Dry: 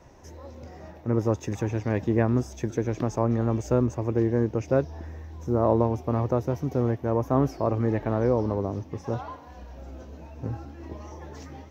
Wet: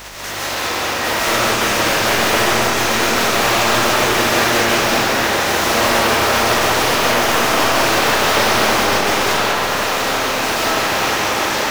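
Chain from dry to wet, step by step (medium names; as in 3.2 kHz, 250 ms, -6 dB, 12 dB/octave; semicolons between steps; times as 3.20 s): spectral contrast reduction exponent 0.26; overdrive pedal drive 37 dB, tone 3.9 kHz, clips at -5.5 dBFS; hum 50 Hz, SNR 19 dB; reverberation RT60 3.9 s, pre-delay 105 ms, DRR -8.5 dB; trim -8 dB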